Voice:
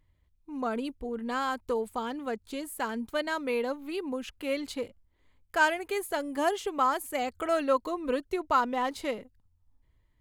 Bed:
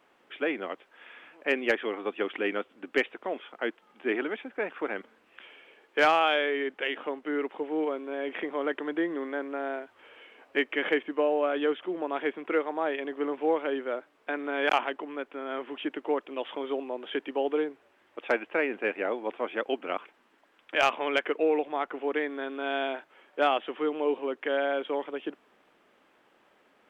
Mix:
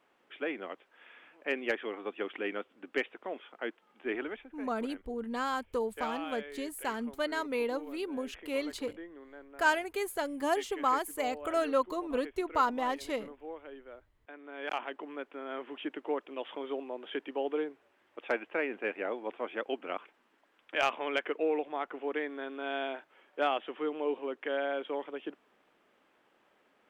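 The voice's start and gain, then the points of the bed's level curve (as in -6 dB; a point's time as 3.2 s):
4.05 s, -2.5 dB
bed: 4.3 s -6 dB
4.63 s -17.5 dB
14.35 s -17.5 dB
15.04 s -5 dB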